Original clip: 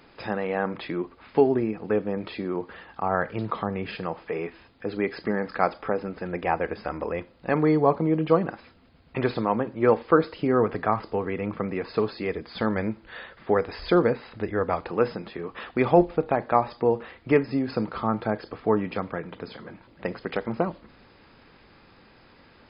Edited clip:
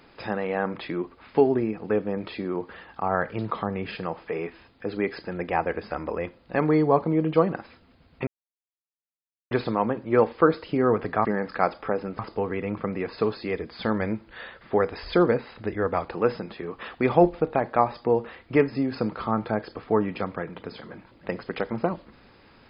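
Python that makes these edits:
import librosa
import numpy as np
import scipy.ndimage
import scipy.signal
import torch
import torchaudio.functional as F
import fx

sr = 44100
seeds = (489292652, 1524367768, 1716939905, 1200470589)

y = fx.edit(x, sr, fx.move(start_s=5.25, length_s=0.94, to_s=10.95),
    fx.insert_silence(at_s=9.21, length_s=1.24), tone=tone)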